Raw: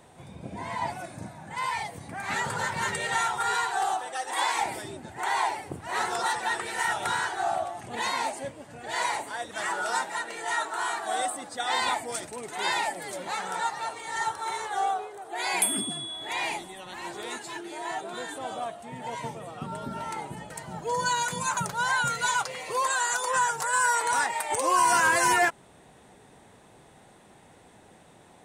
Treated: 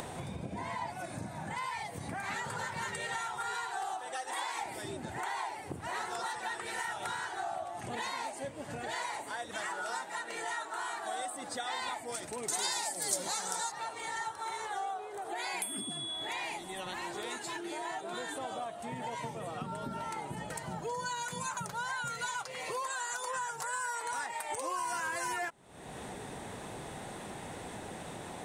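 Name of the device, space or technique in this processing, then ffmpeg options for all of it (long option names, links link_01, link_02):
upward and downward compression: -filter_complex "[0:a]acompressor=mode=upward:threshold=-32dB:ratio=2.5,acompressor=threshold=-36dB:ratio=4,asettb=1/sr,asplit=3[link_01][link_02][link_03];[link_01]atrim=end=12.484[link_04];[link_02]atrim=start=12.48:end=13.72,asetpts=PTS-STARTPTS,afade=type=in:duration=0.004:curve=qsin,afade=type=out:start_time=1.236:duration=0.004:curve=qsin,highshelf=frequency=3800:width_type=q:width=1.5:gain=11.5[link_05];[link_03]atrim=start=13.716[link_06];[link_04][link_05]acrossfade=duration=0.004:curve1=hsin:curve2=qsin[link_07];[link_07][link_06]acrossfade=duration=0.004:curve1=qsin:curve2=hsin"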